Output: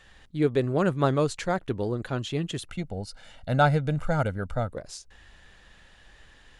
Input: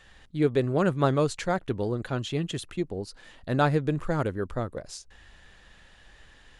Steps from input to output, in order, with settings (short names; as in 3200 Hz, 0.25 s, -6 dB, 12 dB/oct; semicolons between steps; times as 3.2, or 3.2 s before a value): 2.69–4.73 comb 1.4 ms, depth 71%